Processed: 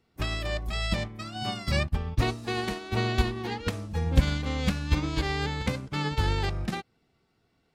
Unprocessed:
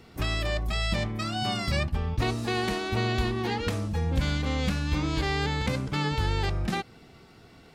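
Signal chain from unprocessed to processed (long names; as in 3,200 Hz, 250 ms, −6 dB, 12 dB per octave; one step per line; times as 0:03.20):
expander for the loud parts 2.5 to 1, over −38 dBFS
level +7.5 dB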